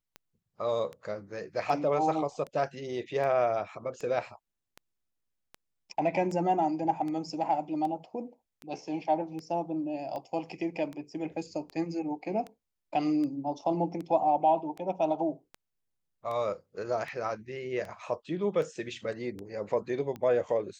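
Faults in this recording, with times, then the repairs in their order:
tick 78 rpm -27 dBFS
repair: de-click

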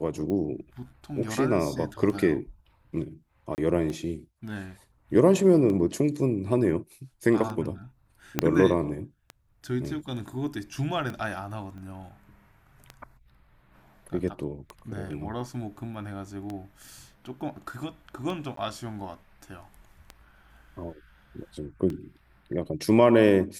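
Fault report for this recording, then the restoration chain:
tick 33 1/3 rpm -22 dBFS
3.55–3.58 gap 29 ms
8.39 pop -7 dBFS
11.78 pop -34 dBFS
18.56–18.57 gap 13 ms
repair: de-click; interpolate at 3.55, 29 ms; interpolate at 18.56, 13 ms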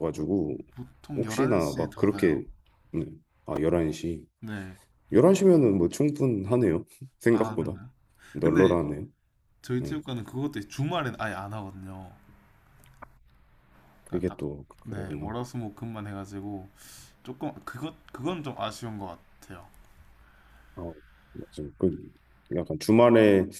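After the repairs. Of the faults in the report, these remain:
8.39 pop

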